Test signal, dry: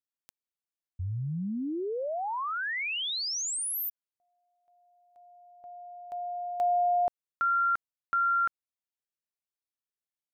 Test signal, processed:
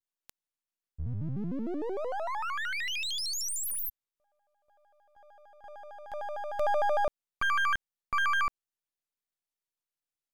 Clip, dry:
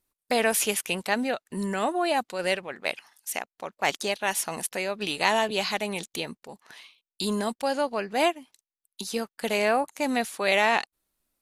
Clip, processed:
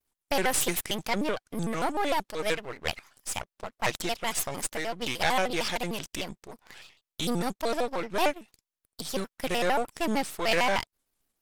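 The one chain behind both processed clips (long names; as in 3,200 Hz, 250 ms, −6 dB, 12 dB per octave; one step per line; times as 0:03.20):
gain on one half-wave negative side −12 dB
pitch modulation by a square or saw wave square 6.6 Hz, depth 250 cents
level +2 dB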